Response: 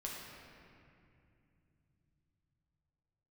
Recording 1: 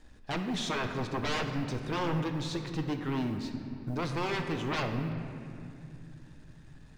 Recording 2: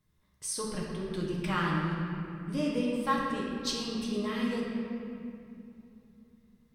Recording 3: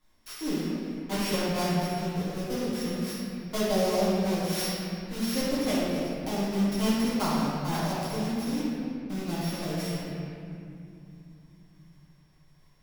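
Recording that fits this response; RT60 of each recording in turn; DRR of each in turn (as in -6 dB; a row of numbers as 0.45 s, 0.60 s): 2; no single decay rate, 2.5 s, 2.5 s; 4.5 dB, -4.0 dB, -10.5 dB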